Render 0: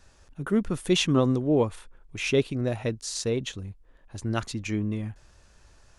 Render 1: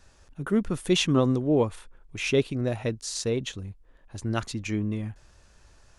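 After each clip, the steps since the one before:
no processing that can be heard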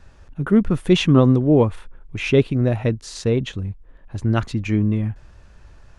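bass and treble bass +5 dB, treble −11 dB
level +6 dB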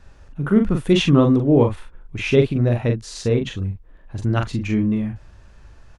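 double-tracking delay 42 ms −5 dB
level −1 dB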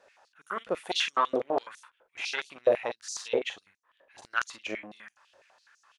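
harmonic generator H 4 −19 dB, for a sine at −1.5 dBFS
high-pass on a step sequencer 12 Hz 540–6,100 Hz
level −7.5 dB

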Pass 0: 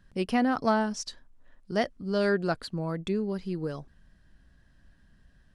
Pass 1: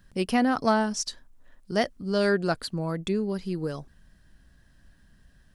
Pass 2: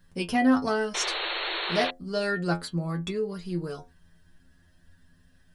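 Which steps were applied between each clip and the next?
high-shelf EQ 6,700 Hz +10 dB; level +2 dB
stiff-string resonator 85 Hz, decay 0.25 s, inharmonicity 0.002; sound drawn into the spectrogram noise, 0:00.94–0:01.91, 320–4,400 Hz −38 dBFS; level +7 dB

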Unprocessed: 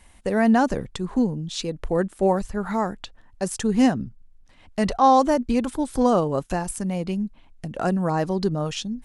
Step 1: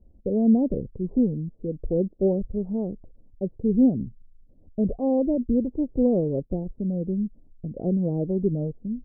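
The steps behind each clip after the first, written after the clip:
Butterworth low-pass 530 Hz 36 dB per octave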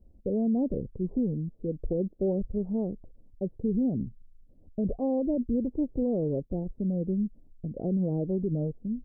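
brickwall limiter −18.5 dBFS, peak gain reduction 8.5 dB
level −2 dB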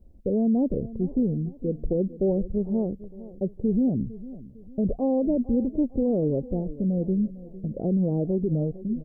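repeating echo 454 ms, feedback 41%, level −17 dB
level +4 dB

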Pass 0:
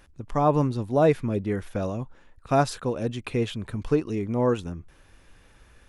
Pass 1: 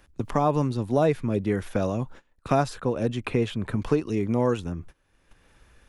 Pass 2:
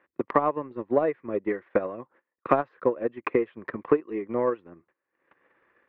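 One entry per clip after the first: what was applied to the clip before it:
noise gate −45 dBFS, range −23 dB; multiband upward and downward compressor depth 70%
loudspeaker in its box 270–2,400 Hz, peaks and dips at 350 Hz +7 dB, 520 Hz +6 dB, 1,100 Hz +8 dB, 1,900 Hz +9 dB; transient designer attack +10 dB, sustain −8 dB; level −8.5 dB

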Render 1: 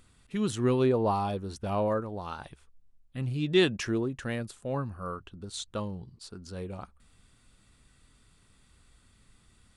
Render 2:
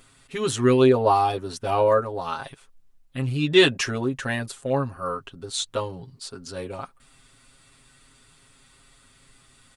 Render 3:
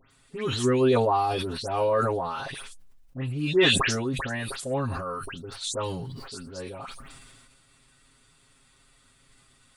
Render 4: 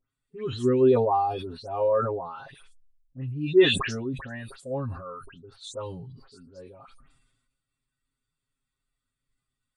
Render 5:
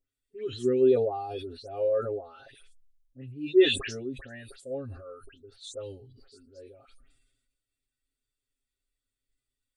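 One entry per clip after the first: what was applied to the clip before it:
low-shelf EQ 270 Hz −9 dB; comb filter 7.4 ms, depth 95%; level +7 dB
all-pass dispersion highs, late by 114 ms, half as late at 2,800 Hz; level that may fall only so fast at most 29 dB per second; level −5 dB
every bin expanded away from the loudest bin 1.5 to 1
phaser with its sweep stopped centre 410 Hz, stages 4; level −1.5 dB

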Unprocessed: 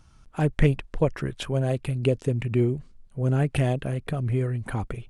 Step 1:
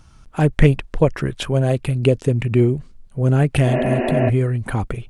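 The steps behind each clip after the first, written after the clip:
healed spectral selection 0:03.70–0:04.27, 220–3,000 Hz before
level +7 dB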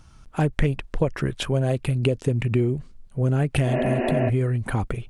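downward compressor 5 to 1, threshold −15 dBFS, peak gain reduction 8 dB
level −2 dB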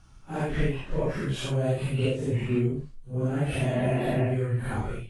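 random phases in long frames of 200 ms
level −3.5 dB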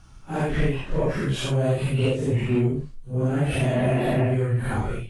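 soft clipping −17.5 dBFS, distortion −21 dB
level +5 dB

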